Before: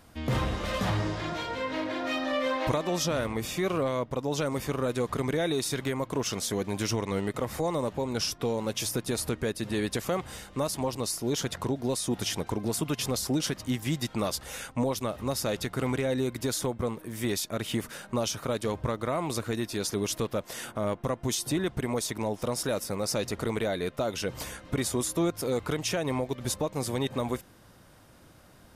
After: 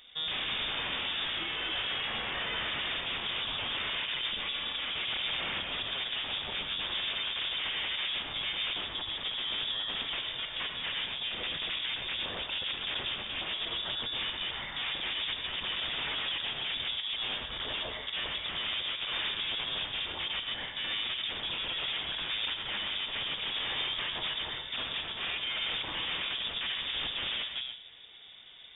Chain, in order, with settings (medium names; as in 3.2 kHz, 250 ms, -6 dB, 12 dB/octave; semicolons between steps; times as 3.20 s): chunks repeated in reverse 156 ms, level -2 dB; band-stop 1.1 kHz, Q 9.6; de-hum 127.1 Hz, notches 18; 8.73–10.13 s: compressor with a negative ratio -30 dBFS, ratio -0.5; wavefolder -30 dBFS; 4.29–4.88 s: comb of notches 290 Hz; gated-style reverb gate 150 ms rising, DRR 6 dB; frequency inversion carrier 3.6 kHz